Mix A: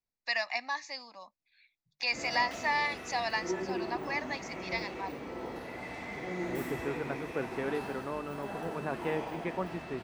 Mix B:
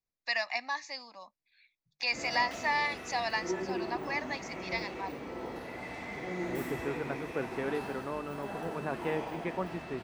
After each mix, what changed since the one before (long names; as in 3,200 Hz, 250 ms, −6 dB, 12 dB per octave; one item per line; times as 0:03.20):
nothing changed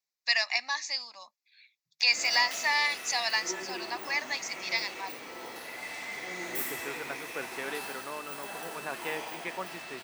master: add spectral tilt +4.5 dB per octave